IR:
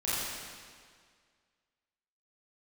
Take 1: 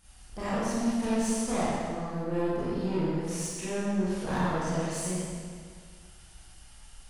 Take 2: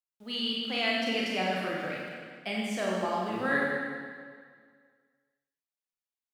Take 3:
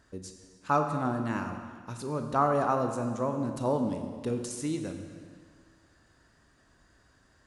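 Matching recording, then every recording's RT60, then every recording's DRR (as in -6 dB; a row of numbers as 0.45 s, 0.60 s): 1; 1.9 s, 1.9 s, 1.9 s; -11.0 dB, -4.5 dB, 5.0 dB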